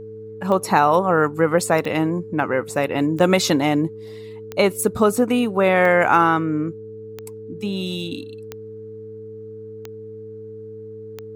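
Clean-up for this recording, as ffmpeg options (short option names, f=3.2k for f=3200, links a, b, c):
-af "adeclick=t=4,bandreject=f=106.1:t=h:w=4,bandreject=f=212.2:t=h:w=4,bandreject=f=318.3:t=h:w=4,bandreject=f=440:w=30"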